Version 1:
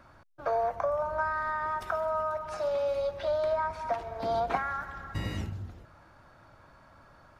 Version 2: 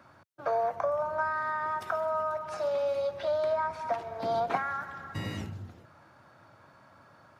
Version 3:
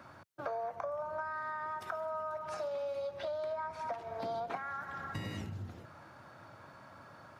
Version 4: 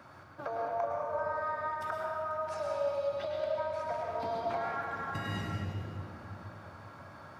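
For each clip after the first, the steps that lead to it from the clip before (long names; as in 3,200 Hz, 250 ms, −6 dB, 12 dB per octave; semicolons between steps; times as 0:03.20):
high-pass filter 98 Hz 24 dB per octave
downward compressor 4 to 1, threshold −41 dBFS, peak gain reduction 15 dB; level +3 dB
convolution reverb RT60 2.7 s, pre-delay 98 ms, DRR −1.5 dB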